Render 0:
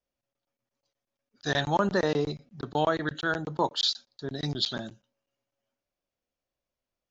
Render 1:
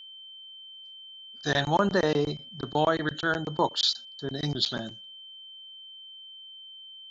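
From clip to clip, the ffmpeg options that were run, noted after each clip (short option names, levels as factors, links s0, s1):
-af "aeval=exprs='val(0)+0.00562*sin(2*PI*3100*n/s)':c=same,volume=1.19"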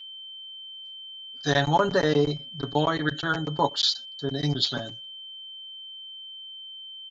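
-af "aecho=1:1:7.1:0.74"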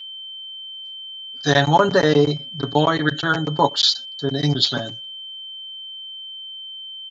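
-af "highpass=55,volume=2.11"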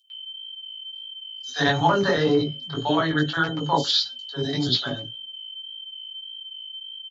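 -filter_complex "[0:a]acrossover=split=610|6000[s0][s1][s2];[s1]adelay=100[s3];[s0]adelay=140[s4];[s4][s3][s2]amix=inputs=3:normalize=0,flanger=delay=16.5:depth=3.5:speed=1.7"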